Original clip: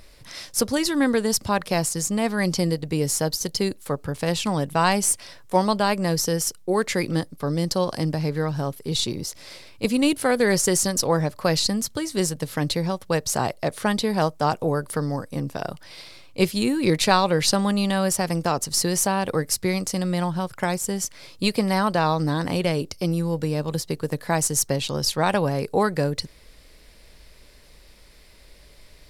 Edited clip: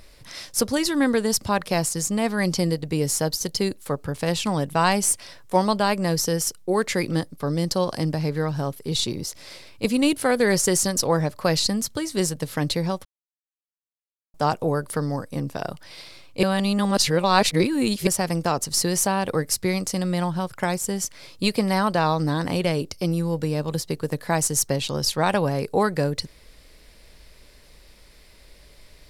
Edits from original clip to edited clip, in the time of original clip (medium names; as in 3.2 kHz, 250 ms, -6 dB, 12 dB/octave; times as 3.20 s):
13.05–14.34 s: mute
16.43–18.07 s: reverse